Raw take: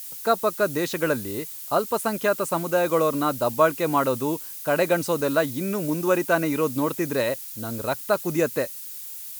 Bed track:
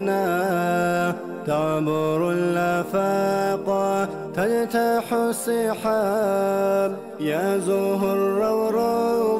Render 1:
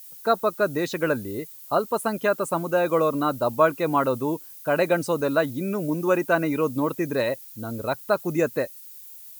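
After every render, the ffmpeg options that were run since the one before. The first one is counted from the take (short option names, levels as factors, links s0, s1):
-af "afftdn=nr=10:nf=-37"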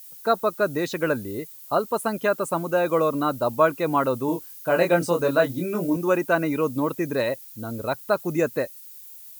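-filter_complex "[0:a]asettb=1/sr,asplit=3[s0][s1][s2];[s0]atrim=end=4.264[s3];[s1]atrim=start=4.26:end=5.97,asetpts=PTS-STARTPTS,afade=t=in:d=0.004:c=qsin,afade=t=out:st=1.706:d=0.004:c=qsin,asplit=2[s4][s5];[s5]adelay=23,volume=0.631[s6];[s4][s6]amix=inputs=2:normalize=0,atrim=end_sample=75411[s7];[s2]atrim=start=5.966[s8];[s3][s7]acrossfade=d=0.004:c1=hsin:c2=qsin[s9];[s9][s8]acrossfade=d=0.004:c1=qsin:c2=hsin"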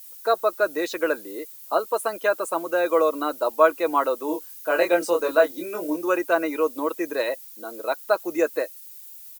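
-af "highpass=f=340:w=0.5412,highpass=f=340:w=1.3066,aecho=1:1:6.2:0.38"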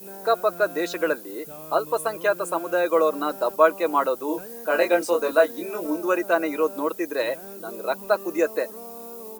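-filter_complex "[1:a]volume=0.1[s0];[0:a][s0]amix=inputs=2:normalize=0"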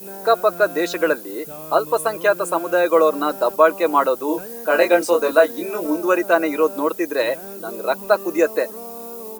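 -af "volume=1.78,alimiter=limit=0.794:level=0:latency=1"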